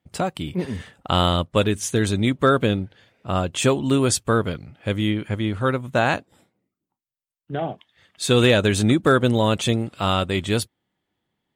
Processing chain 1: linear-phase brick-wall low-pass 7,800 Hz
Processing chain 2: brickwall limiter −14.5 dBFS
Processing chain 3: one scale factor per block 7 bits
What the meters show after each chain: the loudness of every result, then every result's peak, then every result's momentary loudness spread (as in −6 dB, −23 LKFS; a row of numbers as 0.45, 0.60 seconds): −21.5, −26.0, −21.5 LKFS; −5.5, −14.5, −6.0 dBFS; 12, 8, 12 LU